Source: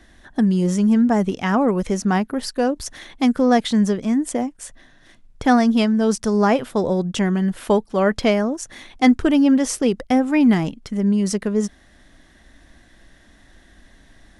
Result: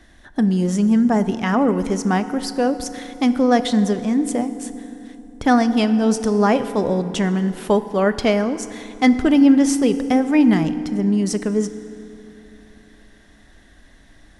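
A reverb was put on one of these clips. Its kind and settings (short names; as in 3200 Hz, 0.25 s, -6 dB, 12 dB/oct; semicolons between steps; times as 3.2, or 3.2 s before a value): FDN reverb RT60 3 s, low-frequency decay 1.25×, high-frequency decay 0.6×, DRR 11 dB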